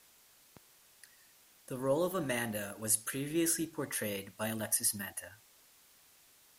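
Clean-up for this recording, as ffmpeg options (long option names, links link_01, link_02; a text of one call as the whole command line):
ffmpeg -i in.wav -af "afftdn=noise_reduction=16:noise_floor=-64" out.wav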